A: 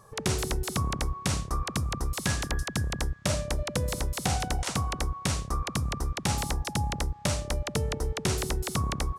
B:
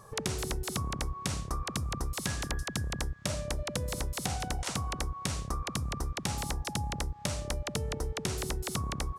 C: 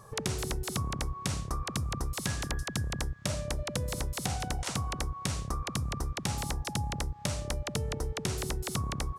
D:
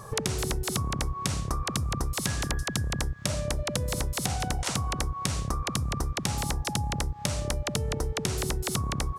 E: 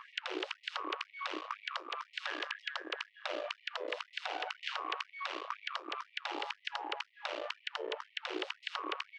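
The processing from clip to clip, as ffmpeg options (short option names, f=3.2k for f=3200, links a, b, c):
-af "acompressor=threshold=-32dB:ratio=6,volume=2dB"
-af "equalizer=f=120:t=o:w=0.75:g=3"
-af "acompressor=threshold=-35dB:ratio=4,volume=9dB"
-af "aeval=exprs='max(val(0),0)':c=same,highpass=f=210:w=0.5412,highpass=f=210:w=1.3066,equalizer=f=310:t=q:w=4:g=7,equalizer=f=760:t=q:w=4:g=-3,equalizer=f=2.9k:t=q:w=4:g=5,lowpass=f=3.4k:w=0.5412,lowpass=f=3.4k:w=1.3066,afftfilt=real='re*gte(b*sr/1024,290*pow(1900/290,0.5+0.5*sin(2*PI*2*pts/sr)))':imag='im*gte(b*sr/1024,290*pow(1900/290,0.5+0.5*sin(2*PI*2*pts/sr)))':win_size=1024:overlap=0.75,volume=1.5dB"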